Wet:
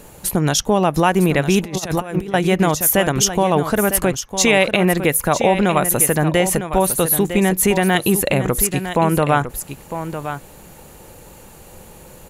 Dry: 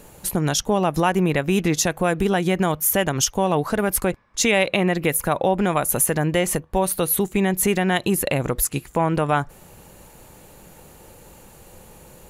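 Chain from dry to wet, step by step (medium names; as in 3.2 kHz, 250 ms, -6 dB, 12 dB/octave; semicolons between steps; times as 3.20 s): delay 955 ms -10 dB; 1.63–2.34 s: compressor with a negative ratio -26 dBFS, ratio -0.5; trim +4 dB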